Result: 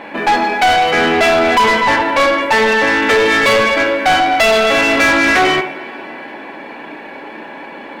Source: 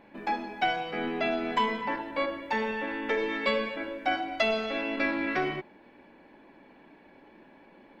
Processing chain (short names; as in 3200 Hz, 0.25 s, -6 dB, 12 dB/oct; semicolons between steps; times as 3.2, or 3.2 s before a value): median filter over 5 samples; two-slope reverb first 0.49 s, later 3.7 s, from -22 dB, DRR 8.5 dB; overdrive pedal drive 26 dB, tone 4600 Hz, clips at -12 dBFS; gain +8 dB